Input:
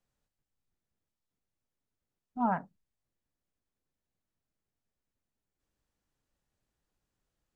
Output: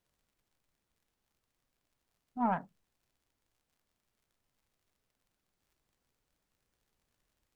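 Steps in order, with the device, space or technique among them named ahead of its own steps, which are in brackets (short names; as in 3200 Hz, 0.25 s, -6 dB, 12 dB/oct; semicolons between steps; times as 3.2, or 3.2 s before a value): record under a worn stylus (tracing distortion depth 0.032 ms; crackle -62 dBFS; pink noise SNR 39 dB); gain -1.5 dB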